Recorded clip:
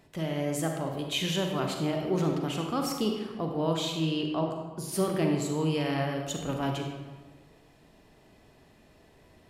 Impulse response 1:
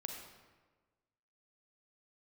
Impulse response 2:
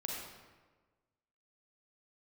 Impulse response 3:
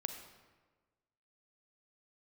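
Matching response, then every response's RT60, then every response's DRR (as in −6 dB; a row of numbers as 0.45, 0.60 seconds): 1; 1.4, 1.4, 1.4 seconds; 2.0, −2.0, 6.5 decibels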